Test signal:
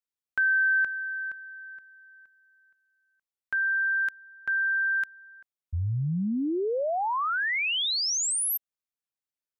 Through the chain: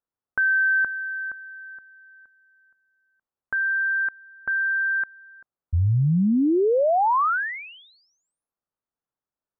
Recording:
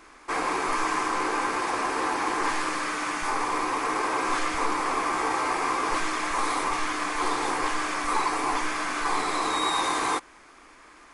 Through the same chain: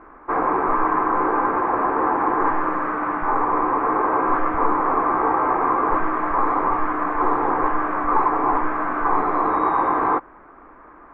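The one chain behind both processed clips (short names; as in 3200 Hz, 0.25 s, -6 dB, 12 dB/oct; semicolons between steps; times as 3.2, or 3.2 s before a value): LPF 1400 Hz 24 dB/oct; gain +8 dB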